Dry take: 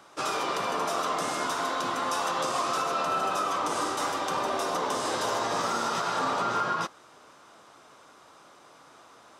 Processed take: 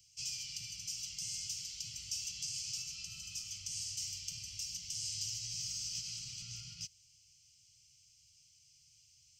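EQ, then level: inverse Chebyshev band-stop 400–990 Hz, stop band 80 dB; static phaser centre 2.5 kHz, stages 8; +1.0 dB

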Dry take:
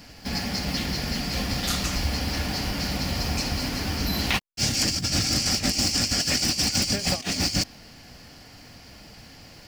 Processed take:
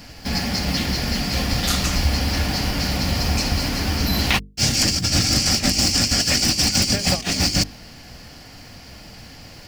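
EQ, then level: bass shelf 120 Hz +4 dB; hum notches 50/100/150/200/250/300/350/400/450 Hz; +5.0 dB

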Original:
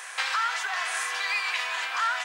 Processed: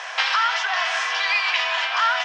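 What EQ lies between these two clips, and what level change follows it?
dynamic bell 540 Hz, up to -5 dB, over -42 dBFS, Q 0.73; distance through air 130 m; cabinet simulation 370–7500 Hz, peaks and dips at 650 Hz +10 dB, 920 Hz +4 dB, 3.1 kHz +6 dB, 5.4 kHz +8 dB; +7.5 dB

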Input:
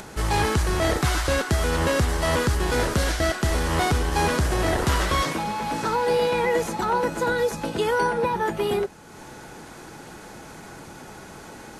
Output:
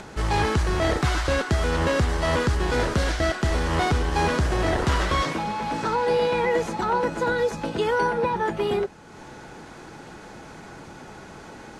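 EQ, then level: distance through air 63 m; 0.0 dB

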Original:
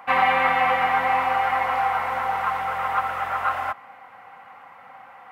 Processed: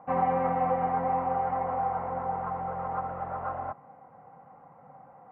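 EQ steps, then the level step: Chebyshev low-pass 530 Hz, order 2; peaking EQ 150 Hz +12 dB 0.55 oct; 0.0 dB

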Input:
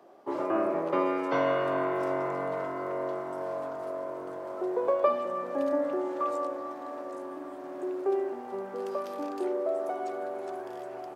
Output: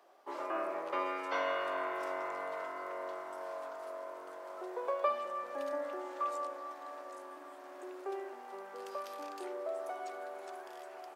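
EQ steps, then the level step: high-pass 270 Hz 6 dB/octave; low-pass 1.4 kHz 6 dB/octave; differentiator; +14.0 dB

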